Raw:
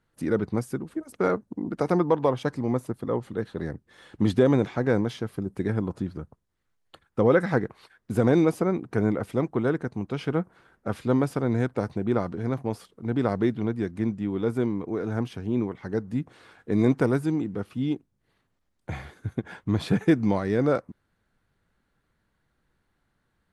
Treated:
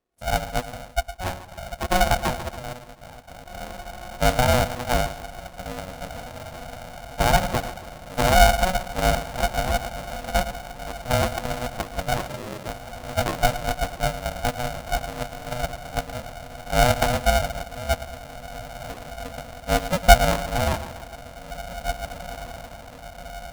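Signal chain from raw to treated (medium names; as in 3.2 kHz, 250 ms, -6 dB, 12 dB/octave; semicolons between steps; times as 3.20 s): echo that smears into a reverb 1919 ms, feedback 64%, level -8 dB; dynamic bell 360 Hz, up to -4 dB, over -36 dBFS, Q 4.7; small resonant body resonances 330/720 Hz, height 15 dB, ringing for 80 ms; 2.73–3.49 s: level held to a coarse grid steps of 15 dB; 5.01–5.52 s: high-pass 200 Hz 12 dB/octave; gate -19 dBFS, range -9 dB; peaking EQ 1.4 kHz -12.5 dB 2.2 oct; two-band feedback delay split 420 Hz, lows 107 ms, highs 141 ms, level -12 dB; 12.28–12.68 s: frequency shift -86 Hz; polarity switched at an audio rate 370 Hz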